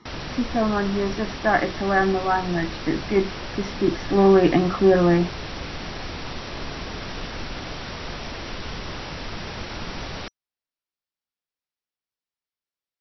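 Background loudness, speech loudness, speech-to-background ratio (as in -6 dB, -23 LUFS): -33.0 LUFS, -21.5 LUFS, 11.5 dB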